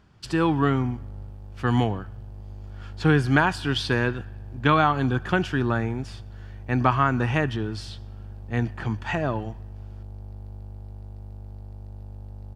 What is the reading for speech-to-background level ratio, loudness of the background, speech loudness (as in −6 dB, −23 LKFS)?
17.0 dB, −41.5 LKFS, −24.5 LKFS